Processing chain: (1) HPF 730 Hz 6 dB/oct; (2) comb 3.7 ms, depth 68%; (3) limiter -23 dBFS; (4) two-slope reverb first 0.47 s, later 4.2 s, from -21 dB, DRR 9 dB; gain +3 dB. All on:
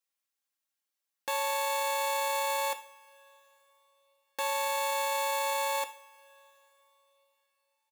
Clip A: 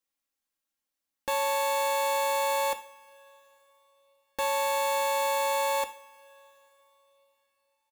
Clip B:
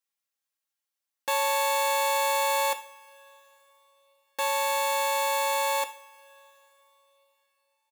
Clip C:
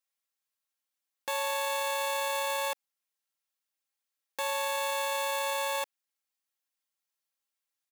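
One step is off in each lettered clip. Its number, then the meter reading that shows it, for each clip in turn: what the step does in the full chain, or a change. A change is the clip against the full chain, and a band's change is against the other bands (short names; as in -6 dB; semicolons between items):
1, 500 Hz band +4.0 dB; 3, mean gain reduction 4.5 dB; 4, 1 kHz band -2.5 dB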